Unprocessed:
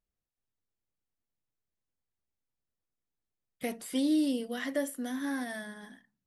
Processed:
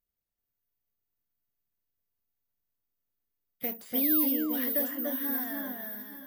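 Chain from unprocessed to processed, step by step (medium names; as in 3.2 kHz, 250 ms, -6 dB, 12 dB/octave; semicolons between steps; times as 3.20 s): painted sound fall, 4.01–4.27 s, 800–2600 Hz -43 dBFS; careless resampling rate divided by 3×, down filtered, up zero stuff; echo whose repeats swap between lows and highs 291 ms, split 1.8 kHz, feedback 51%, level -2 dB; trim -3.5 dB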